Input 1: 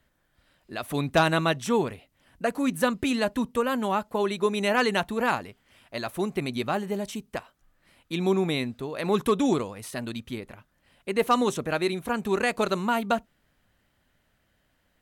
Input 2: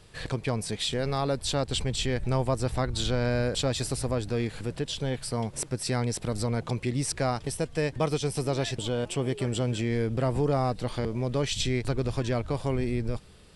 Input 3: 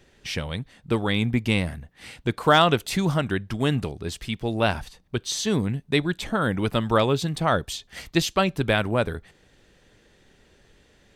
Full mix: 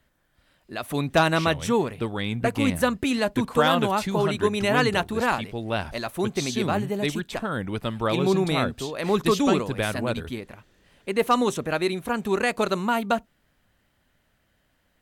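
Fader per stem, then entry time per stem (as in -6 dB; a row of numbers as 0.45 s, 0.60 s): +1.5 dB, mute, -5.0 dB; 0.00 s, mute, 1.10 s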